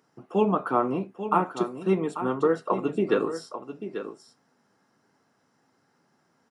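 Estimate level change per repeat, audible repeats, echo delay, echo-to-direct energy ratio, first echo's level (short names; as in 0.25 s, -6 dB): no steady repeat, 1, 0.84 s, -10.5 dB, -10.5 dB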